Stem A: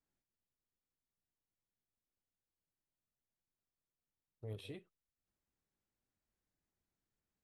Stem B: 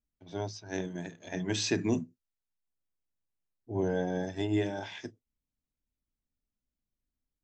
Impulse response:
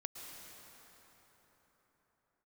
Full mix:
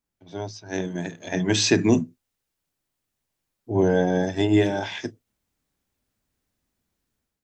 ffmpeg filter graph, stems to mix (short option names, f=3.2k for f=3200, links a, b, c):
-filter_complex "[0:a]volume=2.5dB[a];[1:a]highpass=72,volume=2.5dB,asplit=2[b][c];[c]apad=whole_len=327818[d];[a][d]sidechaincompress=threshold=-34dB:ratio=8:attack=16:release=104[e];[e][b]amix=inputs=2:normalize=0,dynaudnorm=f=550:g=3:m=8dB"